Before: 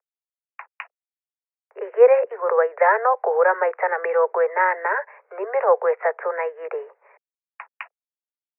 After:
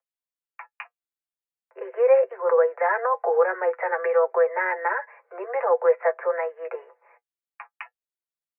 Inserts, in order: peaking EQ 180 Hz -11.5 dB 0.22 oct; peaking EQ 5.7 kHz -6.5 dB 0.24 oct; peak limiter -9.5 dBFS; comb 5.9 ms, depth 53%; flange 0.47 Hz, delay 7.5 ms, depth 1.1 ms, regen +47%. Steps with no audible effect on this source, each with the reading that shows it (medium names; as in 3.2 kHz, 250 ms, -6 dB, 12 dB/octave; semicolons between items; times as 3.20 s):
peaking EQ 180 Hz: input has nothing below 340 Hz; peaking EQ 5.7 kHz: input has nothing above 2.2 kHz